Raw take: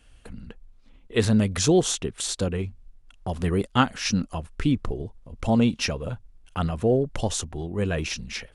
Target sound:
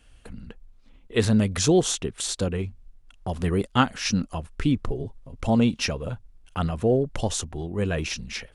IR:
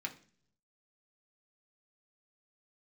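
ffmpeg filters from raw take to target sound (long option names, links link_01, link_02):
-filter_complex "[0:a]asettb=1/sr,asplit=3[link_01][link_02][link_03];[link_01]atrim=end=4.884[link_04];[link_02]atrim=start=4.88:end=5.36,asetpts=PTS-STARTPTS,afade=type=in:duration=0.004:curve=qsin,afade=type=out:start_time=0.476:duration=0.004:curve=qsin,aecho=1:1:7.4:0.51,atrim=end_sample=21168[link_05];[link_03]atrim=start=5.356[link_06];[link_04][link_05]acrossfade=duration=0.004:curve1=hsin:curve2=qsin[link_07];[link_07][link_06]acrossfade=duration=0.004:curve1=qsin:curve2=hsin"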